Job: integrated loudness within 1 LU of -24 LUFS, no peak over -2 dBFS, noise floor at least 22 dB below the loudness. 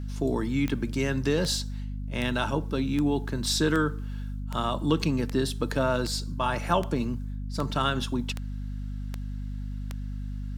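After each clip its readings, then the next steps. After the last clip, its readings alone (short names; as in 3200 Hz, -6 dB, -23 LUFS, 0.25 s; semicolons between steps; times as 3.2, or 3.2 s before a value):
clicks 13; hum 50 Hz; harmonics up to 250 Hz; hum level -31 dBFS; loudness -29.0 LUFS; peak -10.0 dBFS; loudness target -24.0 LUFS
-> de-click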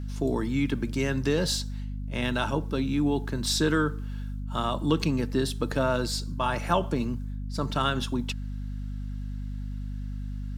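clicks 0; hum 50 Hz; harmonics up to 250 Hz; hum level -31 dBFS
-> notches 50/100/150/200/250 Hz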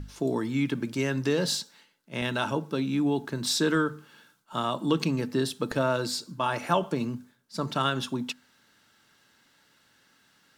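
hum none; loudness -28.5 LUFS; peak -10.5 dBFS; loudness target -24.0 LUFS
-> gain +4.5 dB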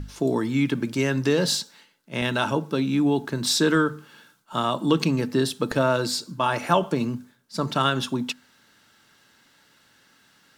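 loudness -24.0 LUFS; peak -6.0 dBFS; noise floor -60 dBFS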